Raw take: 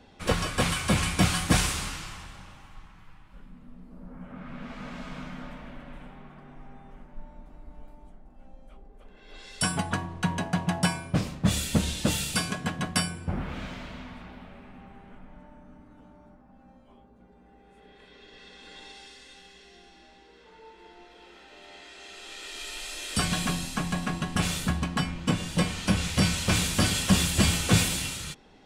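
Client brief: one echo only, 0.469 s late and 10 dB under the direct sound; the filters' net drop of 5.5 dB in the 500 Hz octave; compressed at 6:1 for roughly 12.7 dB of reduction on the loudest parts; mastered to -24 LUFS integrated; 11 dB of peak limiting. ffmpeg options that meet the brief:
-af "equalizer=f=500:t=o:g=-7,acompressor=threshold=-31dB:ratio=6,alimiter=level_in=4.5dB:limit=-24dB:level=0:latency=1,volume=-4.5dB,aecho=1:1:469:0.316,volume=15dB"

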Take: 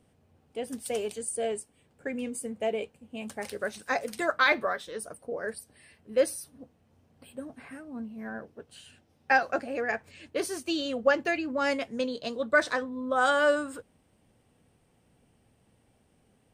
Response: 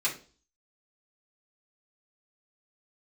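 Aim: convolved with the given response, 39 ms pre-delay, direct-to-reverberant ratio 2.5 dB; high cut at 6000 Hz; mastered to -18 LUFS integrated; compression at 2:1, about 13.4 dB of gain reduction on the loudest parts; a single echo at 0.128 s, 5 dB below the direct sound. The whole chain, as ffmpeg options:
-filter_complex "[0:a]lowpass=6k,acompressor=threshold=-43dB:ratio=2,aecho=1:1:128:0.562,asplit=2[a][b];[1:a]atrim=start_sample=2205,adelay=39[c];[b][c]afir=irnorm=-1:irlink=0,volume=-10.5dB[d];[a][d]amix=inputs=2:normalize=0,volume=20dB"

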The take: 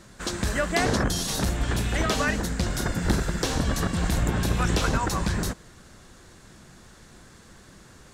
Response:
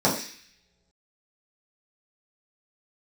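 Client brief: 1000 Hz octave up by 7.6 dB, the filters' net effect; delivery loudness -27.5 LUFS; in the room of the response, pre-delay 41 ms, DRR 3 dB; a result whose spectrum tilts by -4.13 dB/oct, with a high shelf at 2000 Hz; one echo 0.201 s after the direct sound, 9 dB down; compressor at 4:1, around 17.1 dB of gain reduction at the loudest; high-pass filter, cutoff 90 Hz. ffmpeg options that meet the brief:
-filter_complex "[0:a]highpass=90,equalizer=f=1k:t=o:g=8.5,highshelf=f=2k:g=4.5,acompressor=threshold=-38dB:ratio=4,aecho=1:1:201:0.355,asplit=2[a][b];[1:a]atrim=start_sample=2205,adelay=41[c];[b][c]afir=irnorm=-1:irlink=0,volume=-19.5dB[d];[a][d]amix=inputs=2:normalize=0,volume=8.5dB"

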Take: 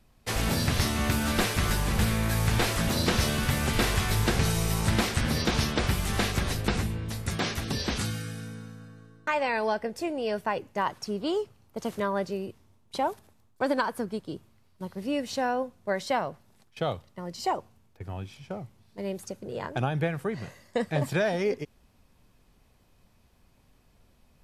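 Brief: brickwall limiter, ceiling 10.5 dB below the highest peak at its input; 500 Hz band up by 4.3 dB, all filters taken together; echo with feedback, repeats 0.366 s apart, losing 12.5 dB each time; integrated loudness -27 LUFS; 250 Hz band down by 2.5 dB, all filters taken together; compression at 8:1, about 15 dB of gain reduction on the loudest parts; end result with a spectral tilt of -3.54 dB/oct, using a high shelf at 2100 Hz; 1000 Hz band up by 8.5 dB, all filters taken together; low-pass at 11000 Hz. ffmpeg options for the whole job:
-af "lowpass=11k,equalizer=f=250:t=o:g=-5,equalizer=f=500:t=o:g=3.5,equalizer=f=1k:t=o:g=8.5,highshelf=f=2.1k:g=6.5,acompressor=threshold=-31dB:ratio=8,alimiter=level_in=1.5dB:limit=-24dB:level=0:latency=1,volume=-1.5dB,aecho=1:1:366|732|1098:0.237|0.0569|0.0137,volume=9.5dB"

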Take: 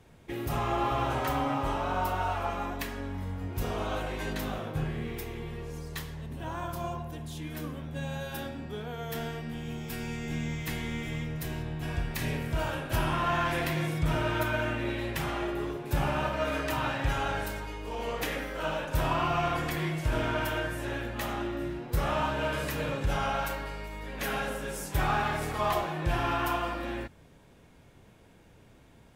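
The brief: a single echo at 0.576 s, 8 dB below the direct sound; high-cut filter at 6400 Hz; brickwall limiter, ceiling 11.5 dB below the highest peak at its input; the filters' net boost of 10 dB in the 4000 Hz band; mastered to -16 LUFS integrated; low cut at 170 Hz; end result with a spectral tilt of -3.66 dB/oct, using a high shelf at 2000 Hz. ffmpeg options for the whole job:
-af "highpass=170,lowpass=6.4k,highshelf=f=2k:g=6,equalizer=f=4k:t=o:g=8,alimiter=limit=-24dB:level=0:latency=1,aecho=1:1:576:0.398,volume=17dB"

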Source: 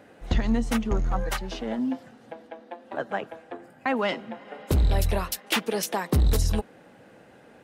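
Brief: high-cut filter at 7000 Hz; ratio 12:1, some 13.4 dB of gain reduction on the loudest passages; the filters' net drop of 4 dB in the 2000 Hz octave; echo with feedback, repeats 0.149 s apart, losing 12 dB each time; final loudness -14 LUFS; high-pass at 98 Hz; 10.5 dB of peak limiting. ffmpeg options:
-af "highpass=98,lowpass=7k,equalizer=f=2k:t=o:g=-5,acompressor=threshold=-34dB:ratio=12,alimiter=level_in=6.5dB:limit=-24dB:level=0:latency=1,volume=-6.5dB,aecho=1:1:149|298|447:0.251|0.0628|0.0157,volume=27.5dB"

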